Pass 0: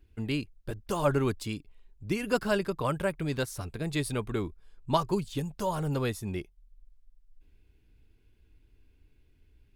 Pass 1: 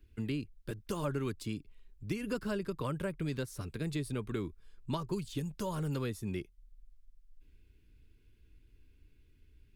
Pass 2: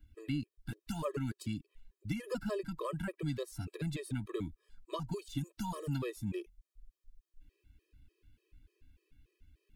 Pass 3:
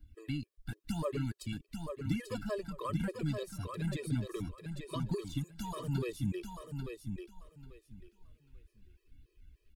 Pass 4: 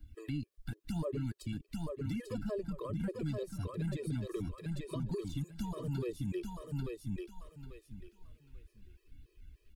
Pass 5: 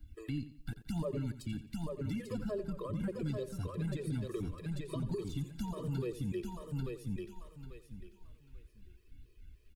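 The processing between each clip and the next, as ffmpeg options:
ffmpeg -i in.wav -filter_complex "[0:a]equalizer=frequency=740:width_type=o:width=0.79:gain=-10.5,acrossover=split=110|1000[link_01][link_02][link_03];[link_01]acompressor=threshold=-48dB:ratio=4[link_04];[link_02]acompressor=threshold=-33dB:ratio=4[link_05];[link_03]acompressor=threshold=-46dB:ratio=4[link_06];[link_04][link_05][link_06]amix=inputs=3:normalize=0" out.wav
ffmpeg -i in.wav -af "afftfilt=real='re*gt(sin(2*PI*3.4*pts/sr)*(1-2*mod(floor(b*sr/1024/330),2)),0)':imag='im*gt(sin(2*PI*3.4*pts/sr)*(1-2*mod(floor(b*sr/1024/330),2)),0)':win_size=1024:overlap=0.75,volume=1dB" out.wav
ffmpeg -i in.wav -filter_complex "[0:a]flanger=delay=0.2:depth=1.6:regen=44:speed=0.97:shape=sinusoidal,asplit=2[link_01][link_02];[link_02]aecho=0:1:841|1682|2523:0.501|0.1|0.02[link_03];[link_01][link_03]amix=inputs=2:normalize=0,volume=4dB" out.wav
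ffmpeg -i in.wav -filter_complex "[0:a]acrossover=split=560[link_01][link_02];[link_01]alimiter=level_in=9.5dB:limit=-24dB:level=0:latency=1:release=59,volume=-9.5dB[link_03];[link_02]acompressor=threshold=-56dB:ratio=4[link_04];[link_03][link_04]amix=inputs=2:normalize=0,volume=3.5dB" out.wav
ffmpeg -i in.wav -af "aecho=1:1:88|176|264:0.211|0.074|0.0259" out.wav

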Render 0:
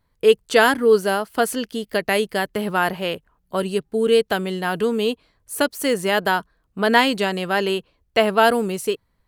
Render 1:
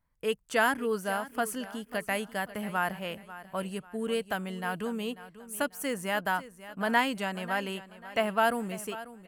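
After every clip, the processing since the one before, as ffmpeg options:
ffmpeg -i in.wav -af "equalizer=frequency=100:width_type=o:width=0.67:gain=-4,equalizer=frequency=400:width_type=o:width=0.67:gain=-10,equalizer=frequency=4000:width_type=o:width=0.67:gain=-10,aecho=1:1:542|1084|1626:0.168|0.0554|0.0183,volume=-8dB" out.wav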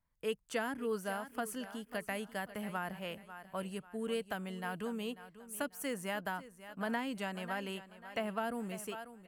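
ffmpeg -i in.wav -filter_complex "[0:a]acrossover=split=430[link_01][link_02];[link_02]acompressor=threshold=-29dB:ratio=10[link_03];[link_01][link_03]amix=inputs=2:normalize=0,volume=-5.5dB" out.wav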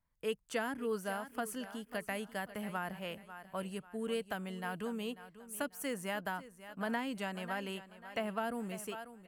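ffmpeg -i in.wav -af anull out.wav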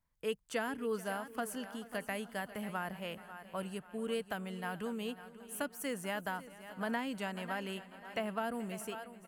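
ffmpeg -i in.wav -af "aecho=1:1:433|866|1299|1732:0.112|0.0606|0.0327|0.0177" out.wav

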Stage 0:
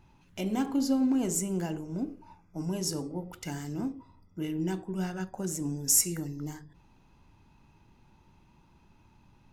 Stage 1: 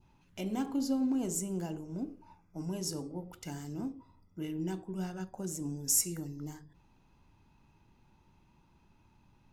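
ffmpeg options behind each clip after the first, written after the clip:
ffmpeg -i in.wav -af "adynamicequalizer=threshold=0.00141:dfrequency=1900:dqfactor=1.5:tfrequency=1900:tqfactor=1.5:attack=5:release=100:ratio=0.375:range=3:mode=cutabove:tftype=bell,volume=-4.5dB" out.wav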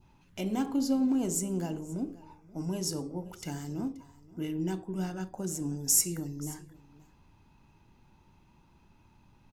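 ffmpeg -i in.wav -af "aecho=1:1:529:0.0944,volume=3.5dB" out.wav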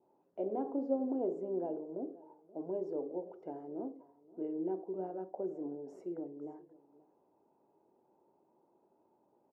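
ffmpeg -i in.wav -af "asuperpass=centerf=510:order=4:qfactor=1.5,volume=4dB" out.wav

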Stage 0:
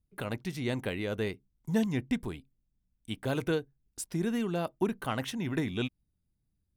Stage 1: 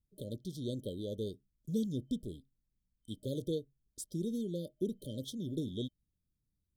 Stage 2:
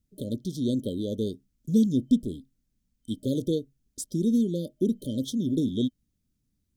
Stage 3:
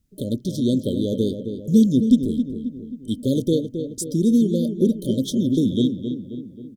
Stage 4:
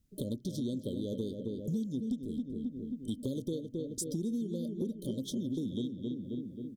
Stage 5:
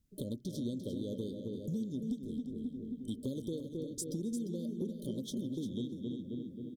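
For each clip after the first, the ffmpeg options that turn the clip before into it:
ffmpeg -i in.wav -af "afftfilt=real='re*(1-between(b*sr/4096,620,3100))':imag='im*(1-between(b*sr/4096,620,3100))':win_size=4096:overlap=0.75,volume=-5.5dB" out.wav
ffmpeg -i in.wav -af "equalizer=frequency=250:width_type=o:width=0.67:gain=9,equalizer=frequency=1000:width_type=o:width=0.67:gain=-5,equalizer=frequency=6300:width_type=o:width=0.67:gain=4,volume=6.5dB" out.wav
ffmpeg -i in.wav -filter_complex "[0:a]asplit=2[link_01][link_02];[link_02]adelay=267,lowpass=frequency=2300:poles=1,volume=-8dB,asplit=2[link_03][link_04];[link_04]adelay=267,lowpass=frequency=2300:poles=1,volume=0.53,asplit=2[link_05][link_06];[link_06]adelay=267,lowpass=frequency=2300:poles=1,volume=0.53,asplit=2[link_07][link_08];[link_08]adelay=267,lowpass=frequency=2300:poles=1,volume=0.53,asplit=2[link_09][link_10];[link_10]adelay=267,lowpass=frequency=2300:poles=1,volume=0.53,asplit=2[link_11][link_12];[link_12]adelay=267,lowpass=frequency=2300:poles=1,volume=0.53[link_13];[link_01][link_03][link_05][link_07][link_09][link_11][link_13]amix=inputs=7:normalize=0,volume=6.5dB" out.wav
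ffmpeg -i in.wav -af "acompressor=threshold=-29dB:ratio=6,volume=-4dB" out.wav
ffmpeg -i in.wav -af "aecho=1:1:348:0.335,volume=-3dB" out.wav

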